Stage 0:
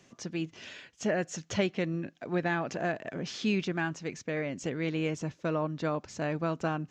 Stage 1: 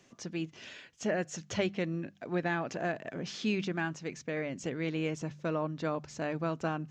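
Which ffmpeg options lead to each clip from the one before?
-af "bandreject=f=49.64:t=h:w=4,bandreject=f=99.28:t=h:w=4,bandreject=f=148.92:t=h:w=4,bandreject=f=198.56:t=h:w=4,volume=0.794"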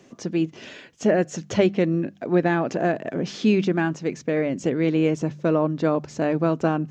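-af "equalizer=f=330:t=o:w=2.7:g=9,volume=1.78"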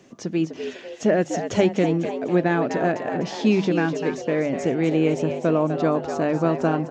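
-filter_complex "[0:a]asplit=6[s0][s1][s2][s3][s4][s5];[s1]adelay=250,afreqshift=96,volume=0.376[s6];[s2]adelay=500,afreqshift=192,volume=0.18[s7];[s3]adelay=750,afreqshift=288,volume=0.0861[s8];[s4]adelay=1000,afreqshift=384,volume=0.0417[s9];[s5]adelay=1250,afreqshift=480,volume=0.02[s10];[s0][s6][s7][s8][s9][s10]amix=inputs=6:normalize=0"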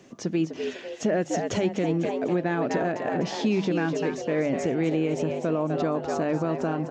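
-af "alimiter=limit=0.168:level=0:latency=1:release=149"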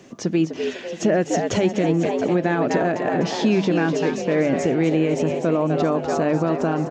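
-af "aecho=1:1:677:0.2,volume=1.88"

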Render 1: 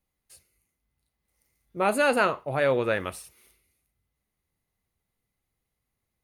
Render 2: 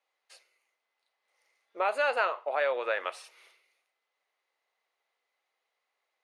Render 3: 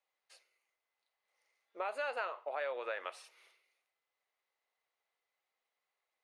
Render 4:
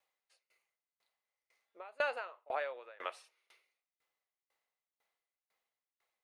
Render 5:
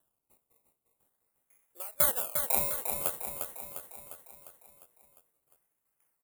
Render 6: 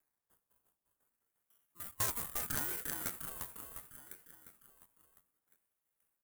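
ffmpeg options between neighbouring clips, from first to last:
-af "lowpass=4200,acompressor=threshold=0.0178:ratio=2.5,highpass=f=530:w=0.5412,highpass=f=530:w=1.3066,volume=2.24"
-af "acompressor=threshold=0.0316:ratio=2,volume=0.473"
-af "aeval=exprs='val(0)*pow(10,-27*if(lt(mod(2*n/s,1),2*abs(2)/1000),1-mod(2*n/s,1)/(2*abs(2)/1000),(mod(2*n/s,1)-2*abs(2)/1000)/(1-2*abs(2)/1000))/20)':c=same,volume=2.11"
-filter_complex "[0:a]acrusher=samples=19:mix=1:aa=0.000001:lfo=1:lforange=19:lforate=0.47,aexciter=amount=11.1:drive=4.9:freq=7900,asplit=2[s0][s1];[s1]aecho=0:1:352|704|1056|1408|1760|2112|2464:0.501|0.286|0.163|0.0928|0.0529|0.0302|0.0172[s2];[s0][s2]amix=inputs=2:normalize=0"
-af "aeval=exprs='0.668*(cos(1*acos(clip(val(0)/0.668,-1,1)))-cos(1*PI/2))+0.133*(cos(4*acos(clip(val(0)/0.668,-1,1)))-cos(4*PI/2))':c=same,aeval=exprs='0.158*(abs(mod(val(0)/0.158+3,4)-2)-1)':c=same,aeval=exprs='val(0)*sin(2*PI*710*n/s+710*0.35/0.71*sin(2*PI*0.71*n/s))':c=same,volume=0.708"

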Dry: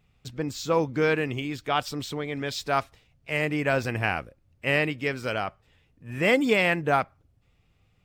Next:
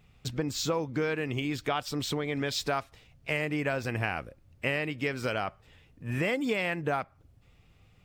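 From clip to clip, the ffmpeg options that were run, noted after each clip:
-af "acompressor=threshold=0.0251:ratio=6,volume=1.78"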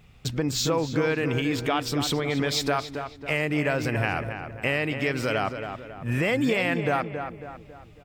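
-filter_complex "[0:a]asplit=2[s0][s1];[s1]alimiter=limit=0.0631:level=0:latency=1,volume=1.12[s2];[s0][s2]amix=inputs=2:normalize=0,asplit=2[s3][s4];[s4]adelay=274,lowpass=f=2500:p=1,volume=0.422,asplit=2[s5][s6];[s6]adelay=274,lowpass=f=2500:p=1,volume=0.46,asplit=2[s7][s8];[s8]adelay=274,lowpass=f=2500:p=1,volume=0.46,asplit=2[s9][s10];[s10]adelay=274,lowpass=f=2500:p=1,volume=0.46,asplit=2[s11][s12];[s12]adelay=274,lowpass=f=2500:p=1,volume=0.46[s13];[s3][s5][s7][s9][s11][s13]amix=inputs=6:normalize=0"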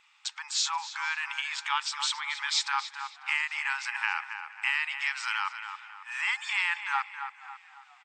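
-filter_complex "[0:a]afftfilt=real='re*between(b*sr/4096,800,8700)':imag='im*between(b*sr/4096,800,8700)':win_size=4096:overlap=0.75,asplit=4[s0][s1][s2][s3];[s1]adelay=479,afreqshift=-43,volume=0.0668[s4];[s2]adelay=958,afreqshift=-86,volume=0.0327[s5];[s3]adelay=1437,afreqshift=-129,volume=0.016[s6];[s0][s4][s5][s6]amix=inputs=4:normalize=0"

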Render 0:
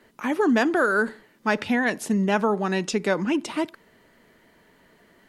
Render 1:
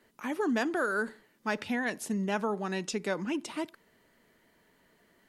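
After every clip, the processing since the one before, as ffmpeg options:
-af "highshelf=f=5000:g=5.5,volume=0.355"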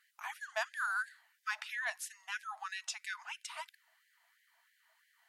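-af "afftfilt=real='re*gte(b*sr/1024,620*pow(1600/620,0.5+0.5*sin(2*PI*3*pts/sr)))':imag='im*gte(b*sr/1024,620*pow(1600/620,0.5+0.5*sin(2*PI*3*pts/sr)))':win_size=1024:overlap=0.75,volume=0.75"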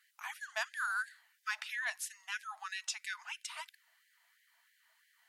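-af "highpass=f=1400:p=1,volume=1.33"

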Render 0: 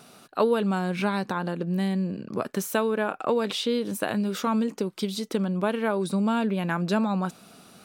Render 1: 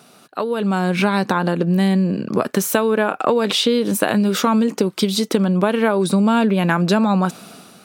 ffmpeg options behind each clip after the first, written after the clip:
-af "acompressor=threshold=0.0562:ratio=6,highpass=110,dynaudnorm=f=160:g=7:m=3.35,volume=1.33"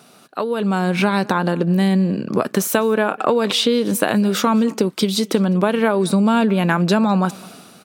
-filter_complex "[0:a]asplit=2[s0][s1];[s1]adelay=204.1,volume=0.0708,highshelf=f=4000:g=-4.59[s2];[s0][s2]amix=inputs=2:normalize=0"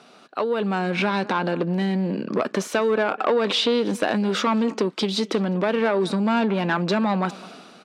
-af "asoftclip=type=tanh:threshold=0.224,highpass=230,lowpass=4700"

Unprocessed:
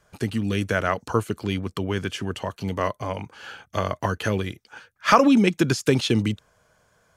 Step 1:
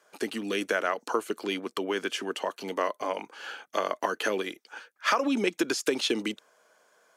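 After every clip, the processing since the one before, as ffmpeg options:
-af "highpass=f=290:w=0.5412,highpass=f=290:w=1.3066,acompressor=threshold=0.0794:ratio=6"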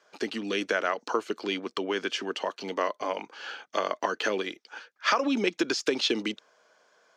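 -af "highshelf=f=7600:t=q:w=1.5:g=-13.5"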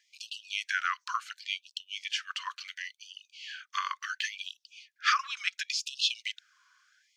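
-af "afftfilt=real='re*gte(b*sr/1024,960*pow(2600/960,0.5+0.5*sin(2*PI*0.71*pts/sr)))':imag='im*gte(b*sr/1024,960*pow(2600/960,0.5+0.5*sin(2*PI*0.71*pts/sr)))':win_size=1024:overlap=0.75"

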